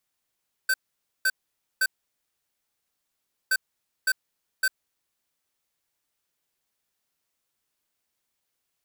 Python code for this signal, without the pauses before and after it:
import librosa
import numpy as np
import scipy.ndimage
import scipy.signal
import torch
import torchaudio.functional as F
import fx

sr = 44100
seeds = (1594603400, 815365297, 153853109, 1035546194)

y = fx.beep_pattern(sr, wave='square', hz=1540.0, on_s=0.05, off_s=0.51, beeps=3, pause_s=1.65, groups=2, level_db=-22.0)